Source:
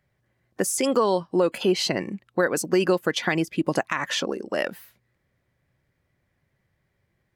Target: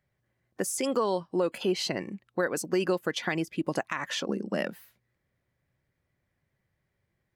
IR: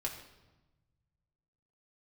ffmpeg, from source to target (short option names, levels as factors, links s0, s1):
-filter_complex "[0:a]asettb=1/sr,asplit=3[s0][s1][s2];[s0]atrim=end=4.294[s3];[s1]atrim=start=4.29:end=4.71,asetpts=PTS-STARTPTS,afade=t=in:d=0.004:c=qsin,afade=t=out:st=0.416:d=0.004:c=qsin,equalizer=f=190:t=o:w=0.78:g=15[s4];[s2]atrim=start=4.706[s5];[s3][s4]acrossfade=d=0.004:c1=hsin:c2=qsin[s6];[s6][s5]acrossfade=d=0.004:c1=qsin:c2=hsin,volume=0.501"